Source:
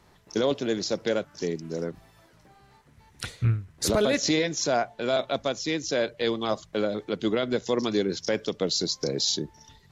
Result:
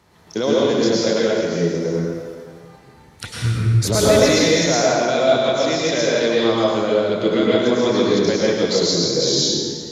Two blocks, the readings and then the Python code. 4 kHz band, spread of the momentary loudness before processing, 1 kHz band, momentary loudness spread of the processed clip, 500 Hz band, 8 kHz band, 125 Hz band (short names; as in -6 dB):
+9.0 dB, 8 LU, +9.5 dB, 9 LU, +10.5 dB, +9.0 dB, +10.0 dB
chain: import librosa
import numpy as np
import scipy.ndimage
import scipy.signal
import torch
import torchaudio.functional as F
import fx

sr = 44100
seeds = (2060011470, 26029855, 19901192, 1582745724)

y = scipy.signal.sosfilt(scipy.signal.butter(2, 58.0, 'highpass', fs=sr, output='sos'), x)
y = fx.rev_plate(y, sr, seeds[0], rt60_s=1.8, hf_ratio=0.8, predelay_ms=90, drr_db=-6.0)
y = y * 10.0 ** (2.5 / 20.0)